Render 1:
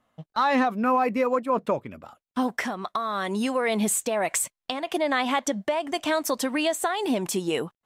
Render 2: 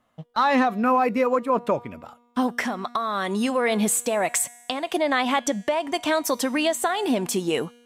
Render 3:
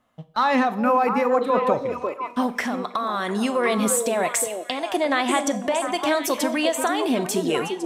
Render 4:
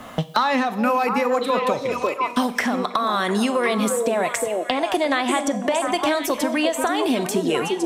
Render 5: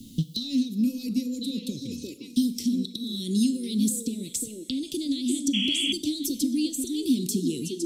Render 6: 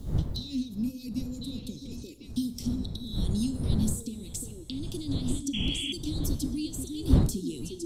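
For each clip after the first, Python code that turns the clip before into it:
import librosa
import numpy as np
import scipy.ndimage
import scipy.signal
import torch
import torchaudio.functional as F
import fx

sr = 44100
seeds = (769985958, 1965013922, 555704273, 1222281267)

y1 = fx.comb_fb(x, sr, f0_hz=240.0, decay_s=1.3, harmonics='all', damping=0.0, mix_pct=50)
y1 = F.gain(torch.from_numpy(y1), 8.0).numpy()
y2 = fx.echo_stepped(y1, sr, ms=350, hz=400.0, octaves=1.4, feedback_pct=70, wet_db=-2)
y2 = fx.rev_schroeder(y2, sr, rt60_s=0.47, comb_ms=29, drr_db=14.0)
y3 = fx.band_squash(y2, sr, depth_pct=100)
y4 = fx.spec_paint(y3, sr, seeds[0], shape='noise', start_s=5.53, length_s=0.4, low_hz=650.0, high_hz=3400.0, level_db=-10.0)
y4 = scipy.signal.sosfilt(scipy.signal.ellip(3, 1.0, 50, [290.0, 4000.0], 'bandstop', fs=sr, output='sos'), y4)
y5 = fx.dmg_wind(y4, sr, seeds[1], corner_hz=120.0, level_db=-25.0)
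y5 = F.gain(torch.from_numpy(y5), -7.0).numpy()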